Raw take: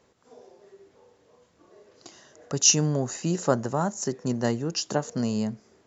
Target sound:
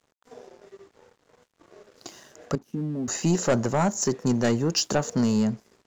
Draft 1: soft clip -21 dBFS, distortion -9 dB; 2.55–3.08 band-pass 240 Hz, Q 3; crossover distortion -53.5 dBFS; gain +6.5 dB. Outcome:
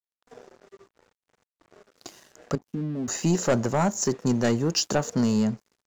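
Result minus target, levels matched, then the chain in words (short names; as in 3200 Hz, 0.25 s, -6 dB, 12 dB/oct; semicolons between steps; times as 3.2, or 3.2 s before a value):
crossover distortion: distortion +5 dB
soft clip -21 dBFS, distortion -9 dB; 2.55–3.08 band-pass 240 Hz, Q 3; crossover distortion -59.5 dBFS; gain +6.5 dB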